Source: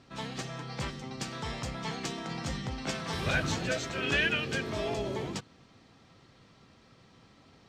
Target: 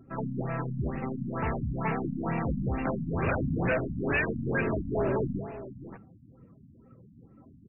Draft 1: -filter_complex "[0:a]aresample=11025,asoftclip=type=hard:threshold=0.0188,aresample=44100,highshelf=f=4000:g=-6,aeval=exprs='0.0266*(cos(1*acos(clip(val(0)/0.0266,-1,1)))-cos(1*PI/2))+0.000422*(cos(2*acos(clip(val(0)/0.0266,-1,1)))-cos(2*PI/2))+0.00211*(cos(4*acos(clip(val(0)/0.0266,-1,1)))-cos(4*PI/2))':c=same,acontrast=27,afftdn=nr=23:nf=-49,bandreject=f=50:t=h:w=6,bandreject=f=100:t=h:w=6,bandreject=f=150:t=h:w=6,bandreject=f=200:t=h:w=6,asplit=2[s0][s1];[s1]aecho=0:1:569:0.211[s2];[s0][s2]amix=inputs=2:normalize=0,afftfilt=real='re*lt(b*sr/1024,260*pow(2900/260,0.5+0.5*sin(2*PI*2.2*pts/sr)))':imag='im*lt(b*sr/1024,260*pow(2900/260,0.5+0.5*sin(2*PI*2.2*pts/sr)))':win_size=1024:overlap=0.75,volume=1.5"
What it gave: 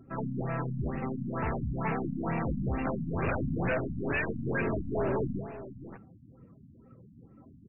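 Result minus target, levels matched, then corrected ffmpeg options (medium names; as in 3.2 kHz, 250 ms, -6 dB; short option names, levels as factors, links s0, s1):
hard clipper: distortion +10 dB
-filter_complex "[0:a]aresample=11025,asoftclip=type=hard:threshold=0.0562,aresample=44100,highshelf=f=4000:g=-6,aeval=exprs='0.0266*(cos(1*acos(clip(val(0)/0.0266,-1,1)))-cos(1*PI/2))+0.000422*(cos(2*acos(clip(val(0)/0.0266,-1,1)))-cos(2*PI/2))+0.00211*(cos(4*acos(clip(val(0)/0.0266,-1,1)))-cos(4*PI/2))':c=same,acontrast=27,afftdn=nr=23:nf=-49,bandreject=f=50:t=h:w=6,bandreject=f=100:t=h:w=6,bandreject=f=150:t=h:w=6,bandreject=f=200:t=h:w=6,asplit=2[s0][s1];[s1]aecho=0:1:569:0.211[s2];[s0][s2]amix=inputs=2:normalize=0,afftfilt=real='re*lt(b*sr/1024,260*pow(2900/260,0.5+0.5*sin(2*PI*2.2*pts/sr)))':imag='im*lt(b*sr/1024,260*pow(2900/260,0.5+0.5*sin(2*PI*2.2*pts/sr)))':win_size=1024:overlap=0.75,volume=1.5"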